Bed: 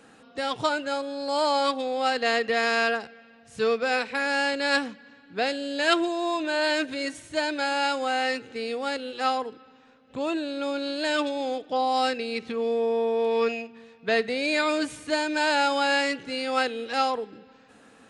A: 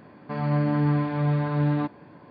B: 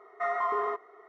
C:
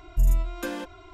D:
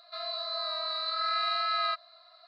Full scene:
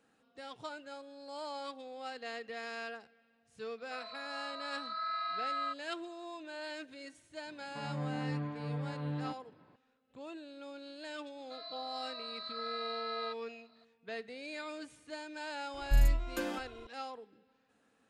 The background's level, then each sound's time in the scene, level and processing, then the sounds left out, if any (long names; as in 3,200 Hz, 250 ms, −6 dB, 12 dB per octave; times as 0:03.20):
bed −18.5 dB
0:03.78: mix in D −16.5 dB + parametric band 1,200 Hz +11 dB 1.6 octaves
0:07.46: mix in A −14.5 dB
0:11.38: mix in D −11 dB
0:15.74: mix in C −5 dB
not used: B